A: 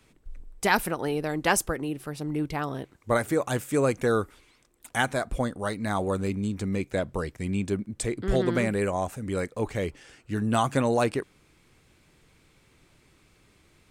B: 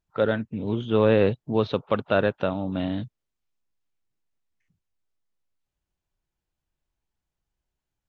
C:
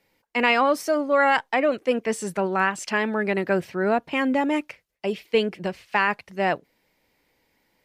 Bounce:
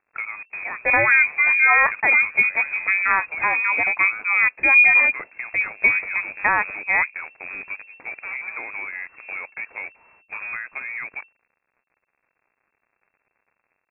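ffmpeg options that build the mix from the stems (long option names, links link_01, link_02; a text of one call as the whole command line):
ffmpeg -i stem1.wav -i stem2.wav -i stem3.wav -filter_complex "[0:a]highpass=290,volume=2.5dB[link_01];[1:a]equalizer=frequency=98:width=1.3:gain=-14.5,volume=3dB[link_02];[2:a]equalizer=frequency=270:width=5.1:gain=9.5,adelay=500,volume=2.5dB[link_03];[link_01][link_02]amix=inputs=2:normalize=0,acrusher=bits=6:dc=4:mix=0:aa=0.000001,acompressor=threshold=-28dB:ratio=6,volume=0dB[link_04];[link_03][link_04]amix=inputs=2:normalize=0,lowpass=frequency=2300:width_type=q:width=0.5098,lowpass=frequency=2300:width_type=q:width=0.6013,lowpass=frequency=2300:width_type=q:width=0.9,lowpass=frequency=2300:width_type=q:width=2.563,afreqshift=-2700" out.wav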